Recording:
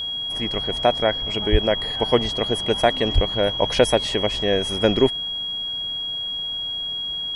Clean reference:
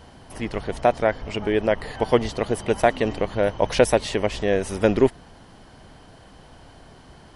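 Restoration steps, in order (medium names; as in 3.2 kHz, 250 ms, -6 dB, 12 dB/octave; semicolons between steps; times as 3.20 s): band-stop 3.3 kHz, Q 30; 1.51–1.63 s: high-pass 140 Hz 24 dB/octave; 3.14–3.26 s: high-pass 140 Hz 24 dB/octave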